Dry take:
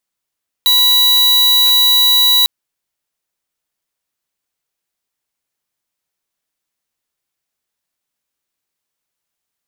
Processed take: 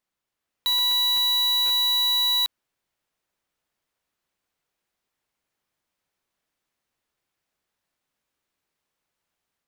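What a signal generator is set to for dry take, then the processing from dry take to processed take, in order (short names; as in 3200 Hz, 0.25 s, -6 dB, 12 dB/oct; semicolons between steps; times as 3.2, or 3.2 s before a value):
tone square 3920 Hz -10.5 dBFS 1.80 s
limiter -19.5 dBFS; high shelf 4100 Hz -10.5 dB; AGC gain up to 3.5 dB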